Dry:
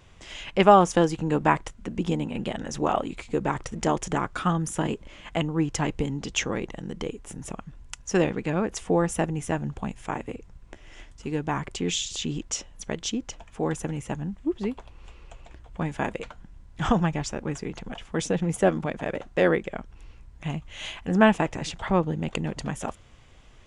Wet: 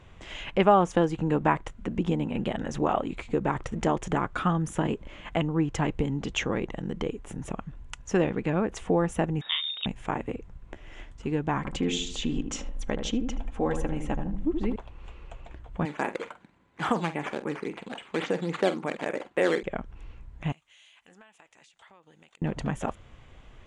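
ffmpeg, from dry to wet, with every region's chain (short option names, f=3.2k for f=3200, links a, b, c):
-filter_complex "[0:a]asettb=1/sr,asplit=3[a][b][c];[a]atrim=end=9.414[d];[b]atrim=start=9.41:end=9.86,asetpts=PTS-STARTPTS,afade=t=in:d=0.004:c=qsin,afade=t=out:st=0.446:d=0.004:c=qsin,asplit=2[e][f];[f]adelay=40,volume=-4dB[g];[e][g]amix=inputs=2:normalize=0,atrim=end_sample=19845,lowpass=f=3.2k:t=q:w=0.5098,lowpass=f=3.2k:t=q:w=0.6013,lowpass=f=3.2k:t=q:w=0.9,lowpass=f=3.2k:t=q:w=2.563,afreqshift=-3800[h];[c]atrim=start=9.856[i];[d][h]acrossfade=d=0.004:c1=hsin:c2=qsin[j];[j][i]acrossfade=d=0.004:c1=qsin:c2=hsin,asettb=1/sr,asplit=3[k][l][m];[k]atrim=end=11.574[n];[l]atrim=start=11.57:end=14.76,asetpts=PTS-STARTPTS,afade=t=in:d=0.004:c=qsin,afade=t=out:st=3.186:d=0.004:c=qsin,aecho=1:1:3.8:0.38,atrim=end_sample=140679,asubboost=boost=8:cutoff=55,asplit=2[o][p];[p]adelay=77,lowpass=f=870:p=1,volume=-5.5dB,asplit=2[q][r];[r]adelay=77,lowpass=f=870:p=1,volume=0.46,asplit=2[s][t];[t]adelay=77,lowpass=f=870:p=1,volume=0.46,asplit=2[u][v];[v]adelay=77,lowpass=f=870:p=1,volume=0.46,asplit=2[w][x];[x]adelay=77,lowpass=f=870:p=1,volume=0.46,asplit=2[y][z];[z]adelay=77,lowpass=f=870:p=1,volume=0.46[aa];[o][q][s][u][w][y][aa]amix=inputs=7:normalize=0,atrim=end_sample=140679[ab];[m]atrim=start=14.756[ac];[n][ab]acrossfade=d=0.004:c1=hsin:c2=qsin[ad];[ad][ac]acrossfade=d=0.004:c1=qsin:c2=hsin,asettb=1/sr,asplit=3[ae][af][ag];[ae]atrim=end=15.854[ah];[af]atrim=start=15.85:end=19.63,asetpts=PTS-STARTPTS,afade=t=in:d=0.004:c=qsin,afade=t=out:st=3.776:d=0.004:c=qsin,acrusher=samples=8:mix=1:aa=0.000001:lfo=1:lforange=8:lforate=3.6,highpass=280,equalizer=f=660:t=q:w=4:g=-4,equalizer=f=2.2k:t=q:w=4:g=3,equalizer=f=5.4k:t=q:w=4:g=-6,lowpass=f=8.5k:w=0.5412,lowpass=f=8.5k:w=1.3066,asplit=2[ai][aj];[aj]adelay=47,volume=-13dB[ak];[ai][ak]amix=inputs=2:normalize=0,atrim=end_sample=166698[al];[ag]atrim=start=19.626[am];[ah][al]acrossfade=d=0.004:c1=hsin:c2=qsin[an];[an][am]acrossfade=d=0.004:c1=qsin:c2=hsin,asettb=1/sr,asplit=3[ao][ap][aq];[ao]atrim=end=20.524[ar];[ap]atrim=start=20.52:end=22.42,asetpts=PTS-STARTPTS,afade=t=in:d=0.004:c=qsin,afade=t=out:st=1.896:d=0.004:c=qsin,aderivative,acompressor=threshold=-52dB:ratio=8:attack=3.2:release=140:knee=1:detection=peak[as];[aq]atrim=start=22.416[at];[ar][as]acrossfade=d=0.004:c1=hsin:c2=qsin[au];[au][at]acrossfade=d=0.004:c1=qsin:c2=hsin,aemphasis=mode=reproduction:type=50kf,acompressor=threshold=-29dB:ratio=1.5,equalizer=f=5.1k:t=o:w=0.48:g=-5.5,volume=2.5dB"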